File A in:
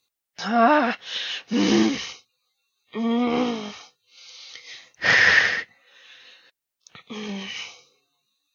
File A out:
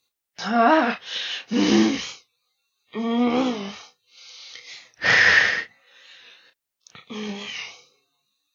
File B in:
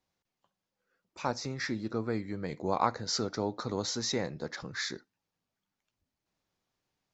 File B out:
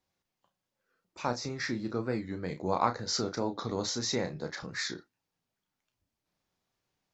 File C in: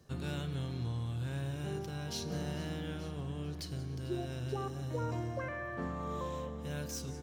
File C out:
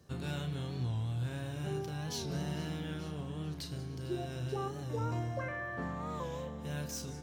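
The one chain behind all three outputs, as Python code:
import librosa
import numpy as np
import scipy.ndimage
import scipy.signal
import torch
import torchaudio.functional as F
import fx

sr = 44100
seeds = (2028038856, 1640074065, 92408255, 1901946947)

y = fx.doubler(x, sr, ms=33.0, db=-8.0)
y = fx.record_warp(y, sr, rpm=45.0, depth_cents=100.0)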